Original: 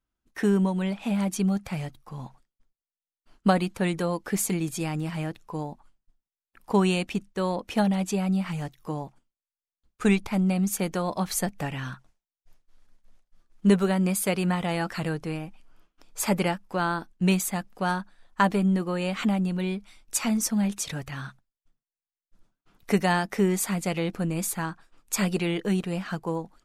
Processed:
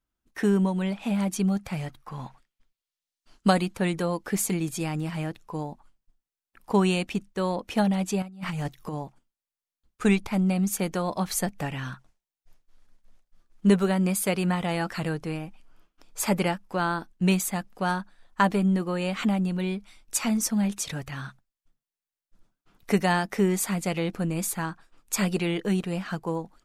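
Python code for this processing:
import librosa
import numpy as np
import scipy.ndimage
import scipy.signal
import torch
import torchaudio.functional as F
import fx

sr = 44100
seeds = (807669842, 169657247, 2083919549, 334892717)

y = fx.peak_eq(x, sr, hz=fx.line((1.86, 1300.0), (3.6, 7700.0)), db=8.5, octaves=1.9, at=(1.86, 3.6), fade=0.02)
y = fx.over_compress(y, sr, threshold_db=-32.0, ratio=-0.5, at=(8.22, 8.95))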